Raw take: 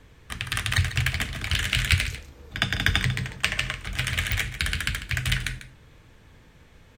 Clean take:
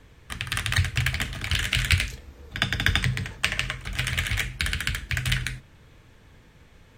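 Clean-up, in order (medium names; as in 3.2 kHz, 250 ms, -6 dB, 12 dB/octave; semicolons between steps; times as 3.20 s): de-click; inverse comb 146 ms -13 dB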